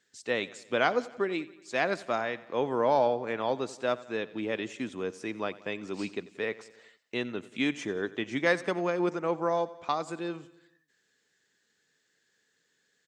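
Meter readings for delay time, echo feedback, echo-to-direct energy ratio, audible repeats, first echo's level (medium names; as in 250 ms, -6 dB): 90 ms, 58%, -17.0 dB, 4, -19.0 dB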